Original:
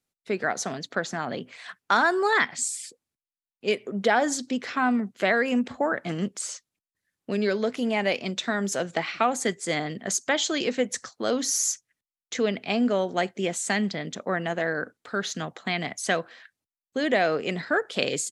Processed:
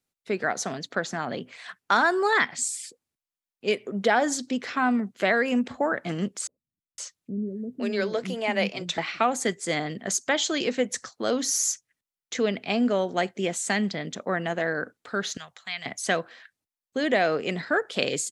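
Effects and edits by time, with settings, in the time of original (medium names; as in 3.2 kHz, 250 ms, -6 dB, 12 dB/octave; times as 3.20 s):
6.47–8.98 s: bands offset in time lows, highs 510 ms, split 310 Hz
15.37–15.86 s: amplifier tone stack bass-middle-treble 10-0-10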